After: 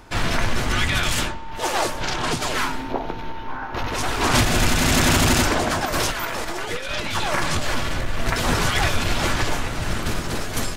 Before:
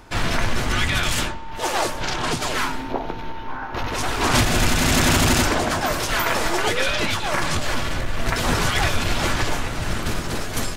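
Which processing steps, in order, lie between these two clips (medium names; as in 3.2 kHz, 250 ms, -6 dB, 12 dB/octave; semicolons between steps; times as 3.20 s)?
5.85–7.24 s: compressor with a negative ratio -24 dBFS, ratio -0.5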